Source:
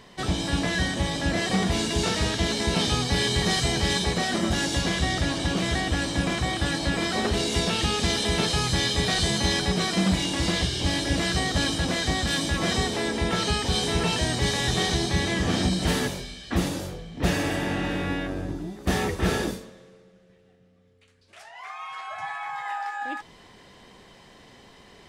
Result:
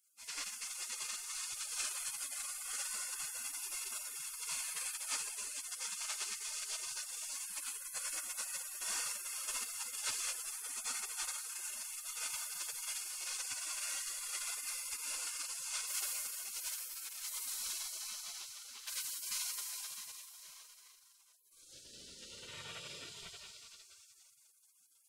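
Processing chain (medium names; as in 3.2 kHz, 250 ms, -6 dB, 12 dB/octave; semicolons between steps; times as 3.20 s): Schroeder reverb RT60 3.6 s, combs from 28 ms, DRR -7.5 dB; dynamic bell 210 Hz, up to -5 dB, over -33 dBFS, Q 2.9; spectral gate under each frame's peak -30 dB weak; trim -2.5 dB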